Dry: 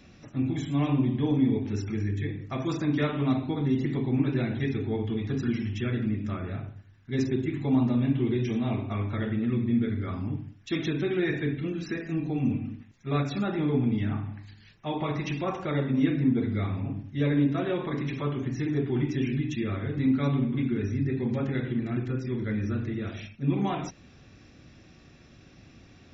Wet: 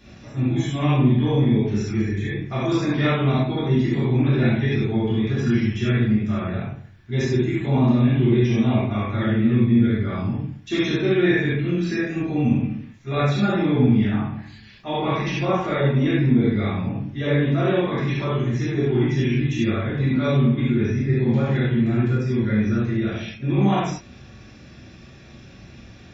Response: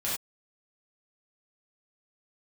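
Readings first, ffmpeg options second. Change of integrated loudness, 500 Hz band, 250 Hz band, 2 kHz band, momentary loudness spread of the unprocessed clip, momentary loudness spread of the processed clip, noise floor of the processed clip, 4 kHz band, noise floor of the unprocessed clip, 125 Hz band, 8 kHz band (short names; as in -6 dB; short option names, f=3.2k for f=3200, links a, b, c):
+7.5 dB, +8.5 dB, +6.5 dB, +9.5 dB, 8 LU, 9 LU, -45 dBFS, +9.0 dB, -54 dBFS, +8.5 dB, n/a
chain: -filter_complex "[1:a]atrim=start_sample=2205[a];[0:a][a]afir=irnorm=-1:irlink=0,volume=2dB"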